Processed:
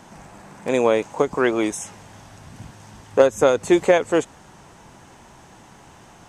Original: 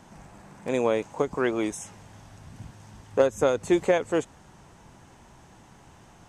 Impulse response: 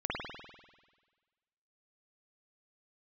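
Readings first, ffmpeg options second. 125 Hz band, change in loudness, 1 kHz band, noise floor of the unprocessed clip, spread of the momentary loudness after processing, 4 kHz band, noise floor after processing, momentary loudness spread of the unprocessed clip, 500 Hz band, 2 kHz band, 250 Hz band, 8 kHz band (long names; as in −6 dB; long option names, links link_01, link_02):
+3.0 dB, +6.0 dB, +7.0 dB, −53 dBFS, 16 LU, +7.0 dB, −48 dBFS, 20 LU, +6.5 dB, +7.0 dB, +5.5 dB, +7.0 dB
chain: -af "lowshelf=frequency=170:gain=-6.5,volume=7dB"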